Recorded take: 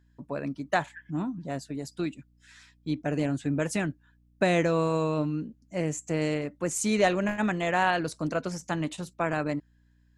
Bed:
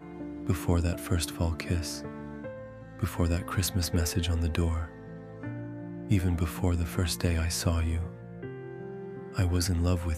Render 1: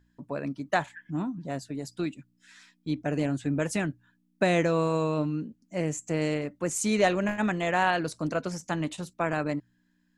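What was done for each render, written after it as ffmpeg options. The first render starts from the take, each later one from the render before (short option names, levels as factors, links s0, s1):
-af "bandreject=f=60:t=h:w=4,bandreject=f=120:t=h:w=4"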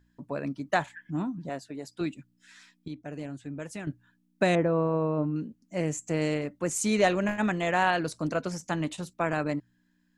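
-filter_complex "[0:a]asettb=1/sr,asplit=3[s0][s1][s2];[s0]atrim=end=1.494[s3];[s1]atrim=start=1.49:end=2.01,asetpts=PTS-STARTPTS,afade=t=in:d=0.004:c=qsin,afade=t=out:st=0.516:d=0.004:c=qsin,bass=f=250:g=-10,treble=f=4000:g=-5[s4];[s2]atrim=start=2.006[s5];[s3][s4]acrossfade=d=0.004:c1=hsin:c2=qsin[s6];[s6][s5]acrossfade=d=0.004:c1=qsin:c2=hsin,asettb=1/sr,asplit=3[s7][s8][s9];[s7]atrim=end=4.554[s10];[s8]atrim=start=4.55:end=5.36,asetpts=PTS-STARTPTS,afade=t=in:d=0.004:c=qsin,afade=t=out:st=0.806:d=0.004:c=qsin,lowpass=1200[s11];[s9]atrim=start=5.356[s12];[s10][s11]acrossfade=d=0.004:c1=hsin:c2=qsin[s13];[s13][s12]acrossfade=d=0.004:c1=qsin:c2=hsin,asplit=3[s14][s15][s16];[s14]atrim=end=2.882[s17];[s15]atrim=start=2.878:end=3.872,asetpts=PTS-STARTPTS,volume=0.316[s18];[s16]atrim=start=3.868[s19];[s17][s18]acrossfade=d=0.004:c1=hsin:c2=hsin[s20];[s20][s19]acrossfade=d=0.004:c1=hsin:c2=hsin"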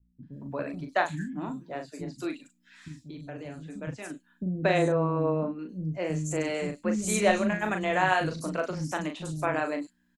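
-filter_complex "[0:a]asplit=2[s0][s1];[s1]adelay=38,volume=0.501[s2];[s0][s2]amix=inputs=2:normalize=0,acrossover=split=250|5100[s3][s4][s5];[s4]adelay=230[s6];[s5]adelay=330[s7];[s3][s6][s7]amix=inputs=3:normalize=0"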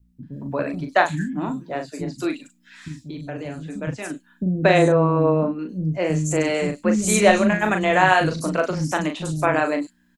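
-af "volume=2.66,alimiter=limit=0.794:level=0:latency=1"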